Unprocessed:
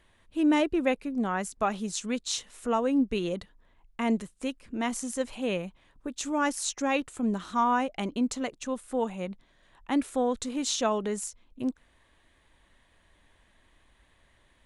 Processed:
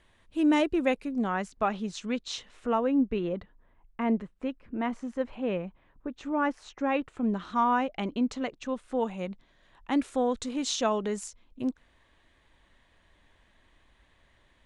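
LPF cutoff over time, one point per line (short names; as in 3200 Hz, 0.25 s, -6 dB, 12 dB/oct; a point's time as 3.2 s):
1.04 s 9800 Hz
1.52 s 3900 Hz
2.51 s 3900 Hz
3.23 s 1900 Hz
6.8 s 1900 Hz
7.51 s 4000 Hz
8.73 s 4000 Hz
9.31 s 6900 Hz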